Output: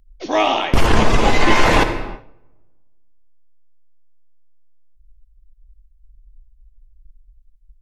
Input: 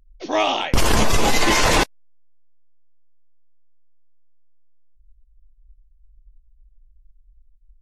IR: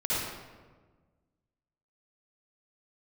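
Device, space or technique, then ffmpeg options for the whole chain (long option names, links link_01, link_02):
keyed gated reverb: -filter_complex "[0:a]acrossover=split=3300[link_01][link_02];[link_02]acompressor=threshold=-35dB:ratio=4:attack=1:release=60[link_03];[link_01][link_03]amix=inputs=2:normalize=0,asplit=3[link_04][link_05][link_06];[1:a]atrim=start_sample=2205[link_07];[link_05][link_07]afir=irnorm=-1:irlink=0[link_08];[link_06]apad=whole_len=344456[link_09];[link_08][link_09]sidechaingate=range=-33dB:threshold=-49dB:ratio=16:detection=peak,volume=-16.5dB[link_10];[link_04][link_10]amix=inputs=2:normalize=0,asettb=1/sr,asplit=3[link_11][link_12][link_13];[link_11]atrim=end=0.864[link_14];[link_12]atrim=start=0.86:end=1.56,asetpts=PTS-STARTPTS,afade=type=in:duration=0.004:curve=qsin,afade=type=out:start_time=0.696:duration=0.004:curve=qsin,lowpass=8600[link_15];[link_13]atrim=start=1.556[link_16];[link_14][link_15]acrossfade=duration=0.004:curve1=hsin:curve2=qsin[link_17];[link_17][link_16]acrossfade=duration=0.004:curve1=qsin:curve2=hsin,volume=2dB"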